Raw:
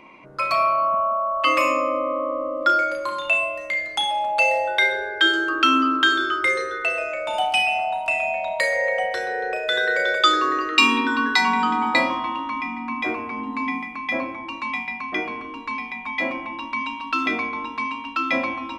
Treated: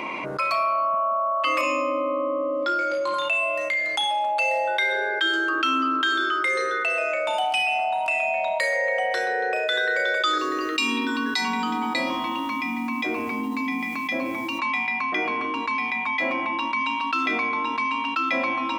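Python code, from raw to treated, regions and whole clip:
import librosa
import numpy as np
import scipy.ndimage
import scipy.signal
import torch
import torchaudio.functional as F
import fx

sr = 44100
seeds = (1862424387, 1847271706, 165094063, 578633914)

y = fx.chain(x, sr, fx.lowpass(hz=6000.0, slope=12),
    fx.peak_eq(hz=1400.0, db=-9.0, octaves=1.1),
    fx.doubler(ms=20.0, db=-3.0), at=(1.61, 3.14))
y = fx.chain(y, sr, fx.peak_eq(hz=1200.0, db=-11.0, octaves=2.4),
    fx.quant_dither(seeds[0], bits=10, dither='none'), at=(10.38, 14.59))
y = fx.highpass(y, sr, hz=280.0, slope=6)
y = fx.env_flatten(y, sr, amount_pct=70)
y = F.gain(torch.from_numpy(y), -8.0).numpy()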